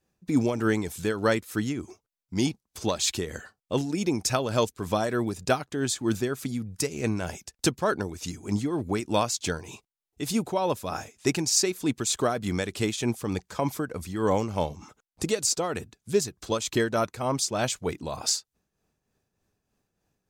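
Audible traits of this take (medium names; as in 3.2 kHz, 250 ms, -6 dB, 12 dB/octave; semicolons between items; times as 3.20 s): tremolo triangle 3.3 Hz, depth 60%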